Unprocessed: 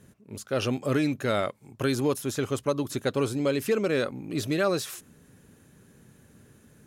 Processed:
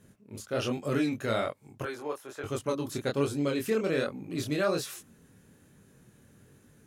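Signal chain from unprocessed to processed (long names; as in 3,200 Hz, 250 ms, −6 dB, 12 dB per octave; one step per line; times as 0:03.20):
0:01.83–0:02.44: three-way crossover with the lows and the highs turned down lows −23 dB, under 450 Hz, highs −13 dB, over 2,100 Hz
chorus effect 1.2 Hz, delay 20 ms, depth 7.3 ms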